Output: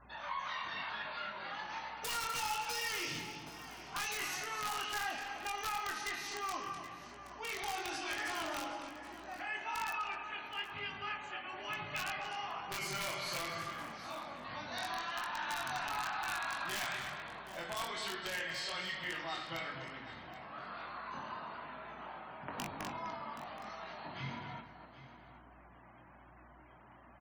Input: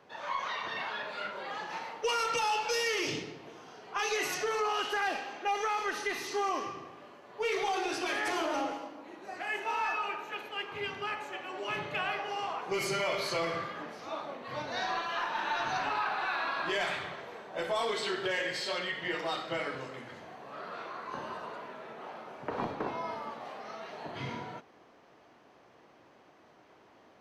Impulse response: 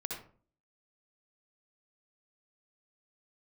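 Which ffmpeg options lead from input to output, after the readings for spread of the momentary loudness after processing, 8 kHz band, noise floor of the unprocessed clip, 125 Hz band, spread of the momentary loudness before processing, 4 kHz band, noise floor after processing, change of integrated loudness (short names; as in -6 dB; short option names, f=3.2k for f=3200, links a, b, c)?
12 LU, -1.5 dB, -60 dBFS, -3.0 dB, 13 LU, -3.5 dB, -58 dBFS, -6.0 dB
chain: -filter_complex "[0:a]aeval=exprs='(mod(14.1*val(0)+1,2)-1)/14.1':c=same,aeval=exprs='val(0)+0.000501*(sin(2*PI*60*n/s)+sin(2*PI*2*60*n/s)/2+sin(2*PI*3*60*n/s)/3+sin(2*PI*4*60*n/s)/4+sin(2*PI*5*60*n/s)/5)':c=same,flanger=delay=19:depth=5:speed=1.1,acompressor=threshold=-57dB:ratio=1.5,equalizer=f=450:t=o:w=0.76:g=-12.5,asplit=2[a][b];[b]aecho=0:1:252:0.335[c];[a][c]amix=inputs=2:normalize=0,afftfilt=real='re*gte(hypot(re,im),0.000631)':imag='im*gte(hypot(re,im),0.000631)':win_size=1024:overlap=0.75,asplit=2[d][e];[e]aecho=0:1:774:0.178[f];[d][f]amix=inputs=2:normalize=0,volume=6.5dB"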